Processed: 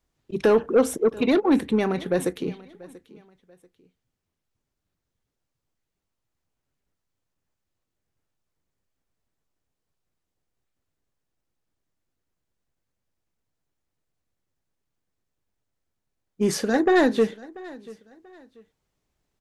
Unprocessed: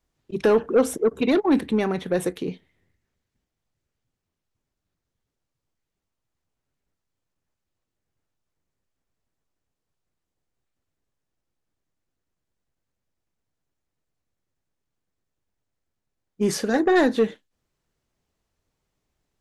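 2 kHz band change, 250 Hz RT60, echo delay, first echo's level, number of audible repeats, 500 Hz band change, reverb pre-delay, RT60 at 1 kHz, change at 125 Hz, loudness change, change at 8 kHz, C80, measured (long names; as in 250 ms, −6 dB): 0.0 dB, no reverb audible, 687 ms, −21.0 dB, 2, 0.0 dB, no reverb audible, no reverb audible, 0.0 dB, 0.0 dB, 0.0 dB, no reverb audible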